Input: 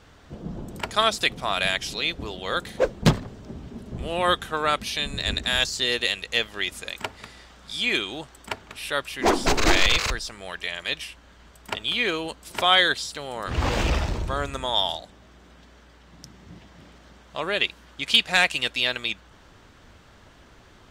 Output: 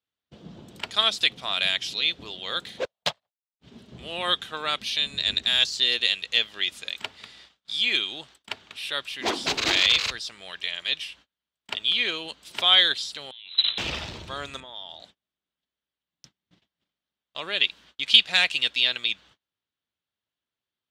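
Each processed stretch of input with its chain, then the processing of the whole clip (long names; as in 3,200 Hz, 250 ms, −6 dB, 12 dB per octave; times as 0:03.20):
0:02.85–0:03.60: low shelf with overshoot 450 Hz −12.5 dB, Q 3 + expander for the loud parts 2.5 to 1, over −43 dBFS
0:13.31–0:13.78: noise gate −23 dBFS, range −16 dB + voice inversion scrambler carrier 4,000 Hz
0:14.60–0:15.00: low-pass filter 1,400 Hz 6 dB per octave + downward compressor, threshold −33 dBFS
whole clip: high-pass filter 97 Hz 12 dB per octave; parametric band 3,500 Hz +13 dB 1.4 octaves; noise gate −41 dBFS, range −34 dB; level −9 dB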